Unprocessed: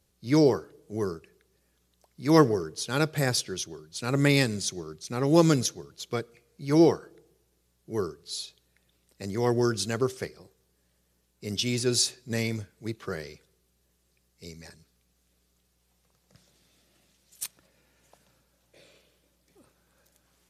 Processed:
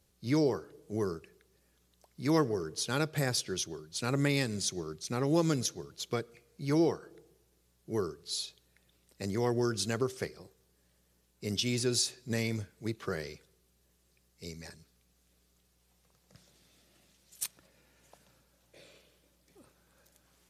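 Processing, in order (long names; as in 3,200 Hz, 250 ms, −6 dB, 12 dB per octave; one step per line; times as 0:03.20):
downward compressor 2 to 1, threshold −30 dBFS, peak gain reduction 10 dB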